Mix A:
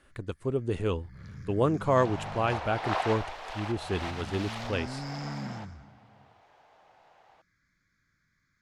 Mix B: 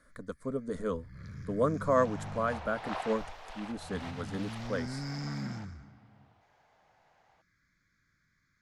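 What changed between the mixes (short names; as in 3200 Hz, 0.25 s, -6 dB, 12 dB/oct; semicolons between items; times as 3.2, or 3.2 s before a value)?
speech: add fixed phaser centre 540 Hz, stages 8; second sound -7.5 dB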